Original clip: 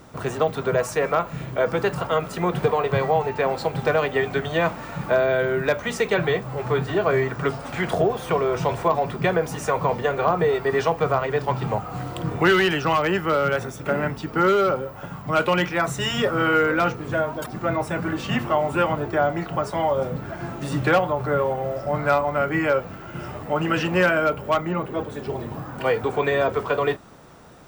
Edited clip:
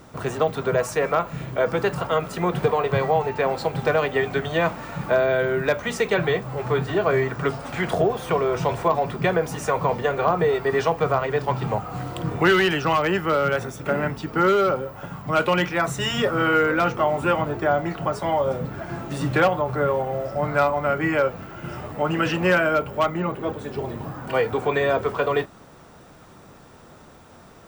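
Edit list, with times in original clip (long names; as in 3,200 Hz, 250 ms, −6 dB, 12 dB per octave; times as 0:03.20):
0:16.97–0:18.48: remove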